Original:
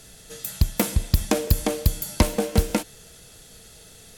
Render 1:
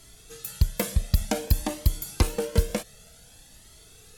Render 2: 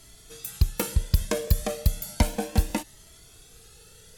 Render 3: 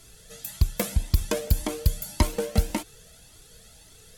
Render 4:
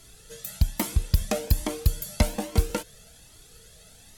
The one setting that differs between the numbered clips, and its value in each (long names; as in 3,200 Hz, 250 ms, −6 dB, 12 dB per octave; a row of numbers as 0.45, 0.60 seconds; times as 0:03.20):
flanger whose copies keep moving one way, speed: 0.54, 0.33, 1.8, 1.2 Hertz